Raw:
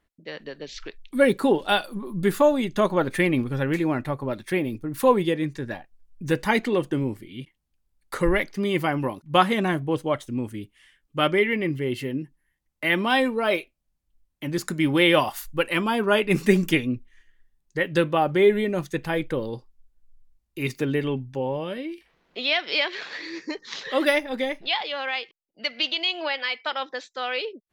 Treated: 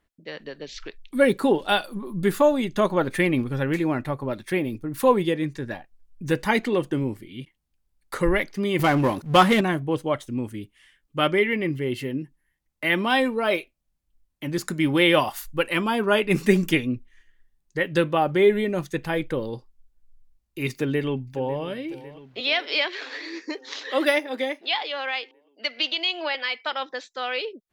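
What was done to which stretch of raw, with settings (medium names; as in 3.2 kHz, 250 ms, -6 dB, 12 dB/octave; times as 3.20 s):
8.79–9.61 s: power-law waveshaper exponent 0.7
20.72–21.63 s: echo throw 550 ms, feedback 70%, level -17 dB
22.40–26.35 s: steep high-pass 250 Hz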